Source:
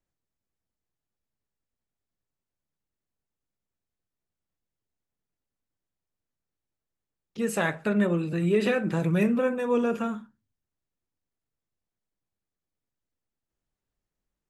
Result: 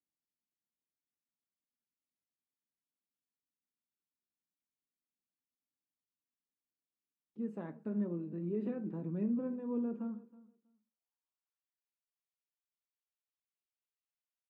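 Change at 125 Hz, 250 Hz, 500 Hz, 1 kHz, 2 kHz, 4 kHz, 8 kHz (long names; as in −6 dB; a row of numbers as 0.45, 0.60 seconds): −13.5 dB, −9.5 dB, −16.0 dB, −21.0 dB, below −25 dB, below −35 dB, below −30 dB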